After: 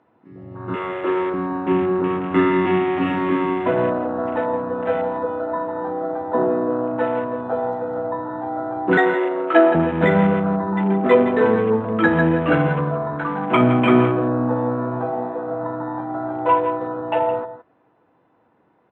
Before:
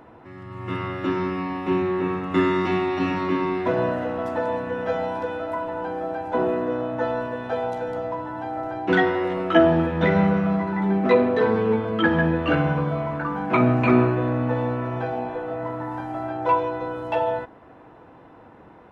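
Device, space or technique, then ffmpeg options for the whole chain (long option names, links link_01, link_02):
over-cleaned archive recording: -filter_complex "[0:a]asettb=1/sr,asplit=3[link_01][link_02][link_03];[link_01]atrim=end=0.754[link_04];[link_02]atrim=start=0.75:end=1.34,asetpts=PTS-STARTPTS,afade=type=in:duration=0.004:curve=qsin,afade=type=out:start_time=0.586:duration=0.004:curve=qsin,lowshelf=frequency=320:width_type=q:width=3:gain=-9.5[link_05];[link_03]atrim=start=1.336[link_06];[link_04][link_05]acrossfade=duration=0.004:curve1=hsin:curve2=qsin[link_07];[link_07][link_06]acrossfade=duration=0.004:curve1=qsin:curve2=hsin,asettb=1/sr,asplit=3[link_08][link_09][link_10];[link_08]atrim=end=8.974[link_11];[link_09]atrim=start=8.97:end=9.75,asetpts=PTS-STARTPTS,afade=type=in:duration=0.004:curve=qsin,afade=type=out:start_time=0.776:duration=0.004:curve=qsin,highpass=frequency=310:width=0.5412,highpass=frequency=310:width=1.3066[link_12];[link_10]atrim=start=9.746[link_13];[link_11][link_12]acrossfade=duration=0.004:curve1=hsin:curve2=qsin[link_14];[link_14][link_13]acrossfade=duration=0.004:curve1=qsin:curve2=hsin,highpass=110,lowpass=5000,afwtdn=0.0224,asettb=1/sr,asplit=3[link_15][link_16][link_17];[link_15]atrim=end=2.414[link_18];[link_16]atrim=start=2.41:end=3.04,asetpts=PTS-STARTPTS,afade=type=in:duration=0.004:curve=qsin,afade=type=out:start_time=0.626:duration=0.004:curve=qsin,lowpass=5000[link_19];[link_17]atrim=start=3.036[link_20];[link_18][link_19]acrossfade=duration=0.004:curve1=hsin:curve2=qsin[link_21];[link_21][link_20]acrossfade=duration=0.004:curve1=qsin:curve2=hsin,aecho=1:1:166:0.237,volume=3.5dB"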